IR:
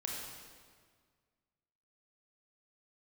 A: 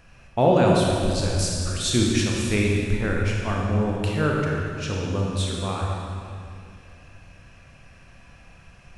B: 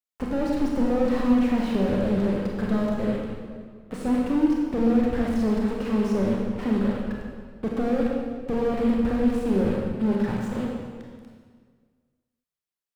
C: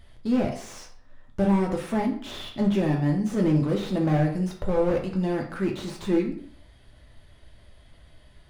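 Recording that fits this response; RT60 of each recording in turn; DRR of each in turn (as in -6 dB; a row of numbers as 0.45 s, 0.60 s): B; 2.5 s, 1.8 s, 0.55 s; -2.0 dB, -2.5 dB, -0.5 dB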